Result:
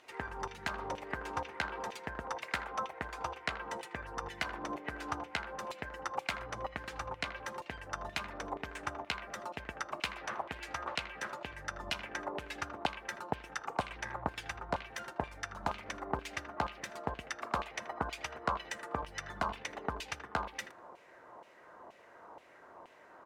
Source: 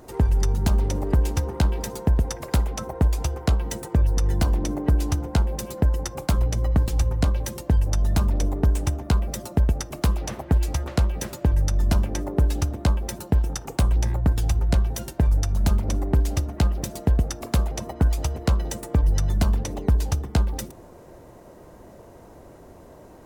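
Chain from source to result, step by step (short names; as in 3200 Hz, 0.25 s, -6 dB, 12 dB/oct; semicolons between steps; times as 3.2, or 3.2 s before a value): speakerphone echo 80 ms, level -11 dB; LFO band-pass saw down 2.1 Hz 930–2800 Hz; gain +4.5 dB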